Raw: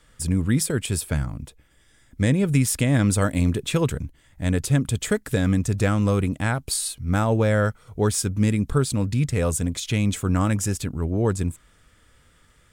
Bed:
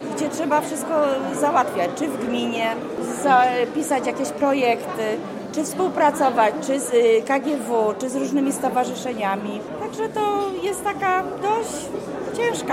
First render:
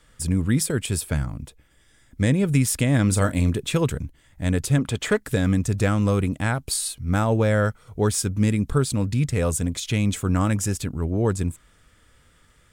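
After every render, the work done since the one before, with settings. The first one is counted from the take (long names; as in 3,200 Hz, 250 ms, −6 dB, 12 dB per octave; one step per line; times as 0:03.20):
0:03.05–0:03.50: double-tracking delay 32 ms −12 dB
0:04.78–0:05.20: mid-hump overdrive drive 15 dB, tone 1,800 Hz, clips at −8 dBFS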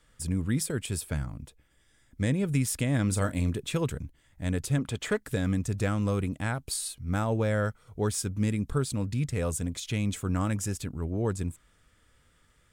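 level −7 dB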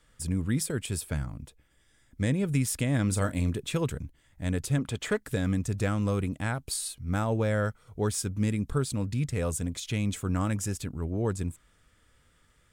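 no processing that can be heard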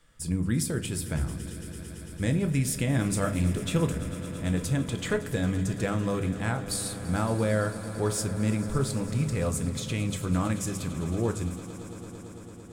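echo that builds up and dies away 112 ms, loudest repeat 5, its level −18 dB
rectangular room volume 200 cubic metres, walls furnished, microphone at 0.75 metres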